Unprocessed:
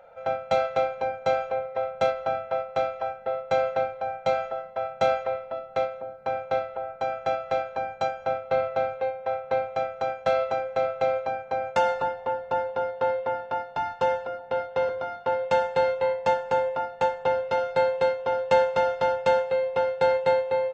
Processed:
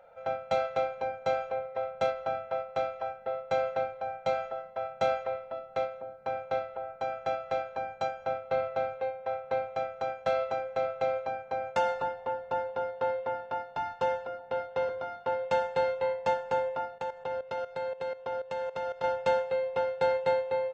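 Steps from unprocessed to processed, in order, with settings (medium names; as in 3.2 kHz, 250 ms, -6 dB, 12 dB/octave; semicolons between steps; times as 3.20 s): 16.98–19.04 s: level held to a coarse grid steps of 14 dB; trim -5 dB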